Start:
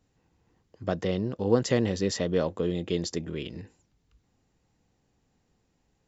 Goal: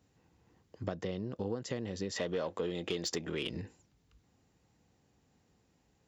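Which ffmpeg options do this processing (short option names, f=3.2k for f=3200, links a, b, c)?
-filter_complex "[0:a]highpass=56,acompressor=threshold=-34dB:ratio=10,asettb=1/sr,asplit=3[a][b][c];[a]atrim=end=2.164[d];[b]atrim=start=2.16:end=3.5,asetpts=PTS-STARTPTS,afade=t=in:d=0.004:c=qsin,afade=t=out:st=1.336:d=0.004:c=qsin,asplit=2[e][f];[f]highpass=f=720:p=1,volume=14dB,asoftclip=type=tanh:threshold=-23.5dB[g];[e][g]amix=inputs=2:normalize=0,lowpass=f=6.1k:p=1,volume=-6dB[h];[c]atrim=start=3.496[i];[d][h]acrossfade=d=0.004:c1=hsin:c2=qsin[j];[j][i]acrossfade=d=0.004:c1=qsin:c2=hsin,volume=1dB"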